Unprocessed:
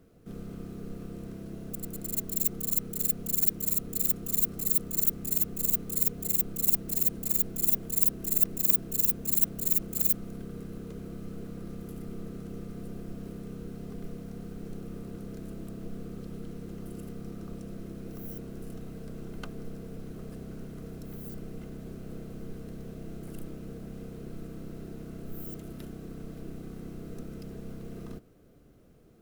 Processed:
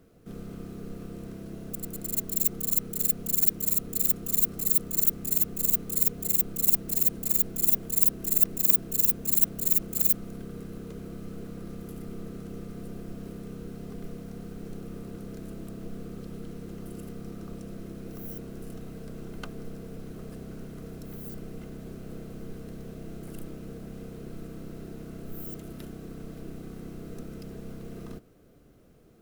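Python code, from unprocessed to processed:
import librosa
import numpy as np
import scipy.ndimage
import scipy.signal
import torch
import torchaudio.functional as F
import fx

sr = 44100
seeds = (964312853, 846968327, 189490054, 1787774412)

y = fx.low_shelf(x, sr, hz=390.0, db=-2.5)
y = y * librosa.db_to_amplitude(2.5)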